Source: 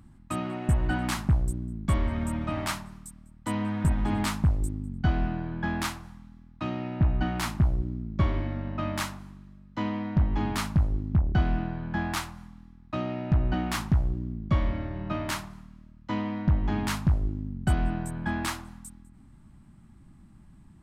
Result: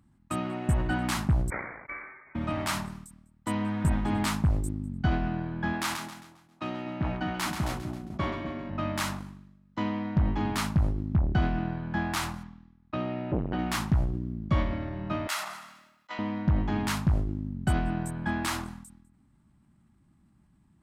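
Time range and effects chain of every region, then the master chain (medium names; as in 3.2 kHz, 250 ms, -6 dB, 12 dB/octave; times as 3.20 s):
1.50–2.35 s: CVSD coder 32 kbps + steep high-pass 1.1 kHz 96 dB/octave + frequency inversion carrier 3.4 kHz
5.73–8.70 s: high-pass 260 Hz 6 dB/octave + two-band feedback delay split 810 Hz, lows 250 ms, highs 134 ms, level -8 dB
12.43–13.59 s: low-pass 4.4 kHz + transformer saturation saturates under 320 Hz
15.27–16.19 s: high-pass 900 Hz + comb 1.5 ms, depth 33%
whole clip: gate -39 dBFS, range -9 dB; high-pass 73 Hz 6 dB/octave; decay stretcher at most 56 dB/s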